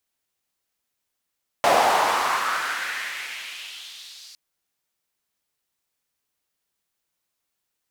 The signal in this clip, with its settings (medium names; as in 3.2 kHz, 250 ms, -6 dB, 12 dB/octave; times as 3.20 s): swept filtered noise white, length 2.71 s bandpass, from 660 Hz, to 4.8 kHz, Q 2.8, exponential, gain ramp -37 dB